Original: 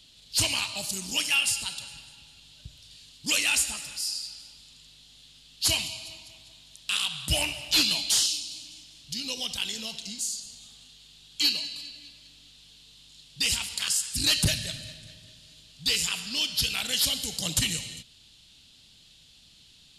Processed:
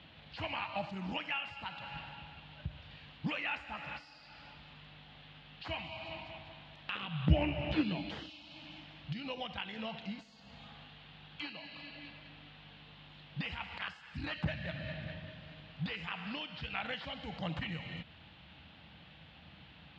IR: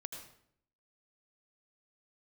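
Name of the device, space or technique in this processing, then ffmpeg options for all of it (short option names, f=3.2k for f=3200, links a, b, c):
bass amplifier: -filter_complex "[0:a]acompressor=threshold=-40dB:ratio=5,highpass=f=71:w=0.5412,highpass=f=71:w=1.3066,equalizer=f=110:t=q:w=4:g=-10,equalizer=f=250:t=q:w=4:g=-7,equalizer=f=400:t=q:w=4:g=-9,equalizer=f=810:t=q:w=4:g=4,lowpass=f=2.1k:w=0.5412,lowpass=f=2.1k:w=1.3066,asettb=1/sr,asplit=3[a][b][c];[a]atrim=end=6.954[d];[b]atrim=start=6.95:end=8.3,asetpts=PTS-STARTPTS,afade=t=in:d=0.004:c=qsin,afade=t=out:st=1.346:d=0.004:c=qsin,lowshelf=f=580:t=q:w=1.5:g=10.5[e];[c]atrim=start=8.296[f];[d][e]acrossfade=d=0.004:c1=hsin:c2=qsin[g];[g][f]acrossfade=d=0.004:c1=qsin:c2=hsin,volume=12dB"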